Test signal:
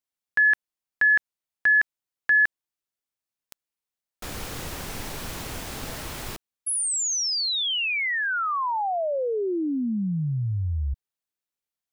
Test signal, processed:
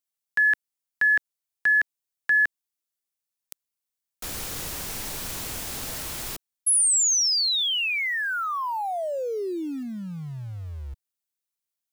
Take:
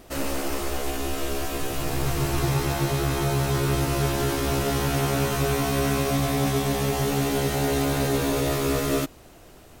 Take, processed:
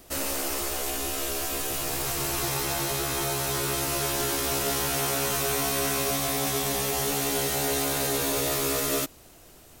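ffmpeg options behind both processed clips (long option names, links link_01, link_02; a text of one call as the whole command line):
ffmpeg -i in.wav -filter_complex "[0:a]highshelf=frequency=4100:gain=10,acrossover=split=350|3100[link_01][link_02][link_03];[link_01]acompressor=threshold=-30dB:ratio=10:attack=0.28:release=200:knee=2.83:detection=peak[link_04];[link_04][link_02][link_03]amix=inputs=3:normalize=0,asplit=2[link_05][link_06];[link_06]acrusher=bits=5:mix=0:aa=0.000001,volume=-10.5dB[link_07];[link_05][link_07]amix=inputs=2:normalize=0,volume=-5dB" out.wav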